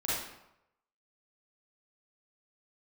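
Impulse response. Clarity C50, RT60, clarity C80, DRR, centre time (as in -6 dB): -2.5 dB, 0.85 s, 3.0 dB, -9.0 dB, 75 ms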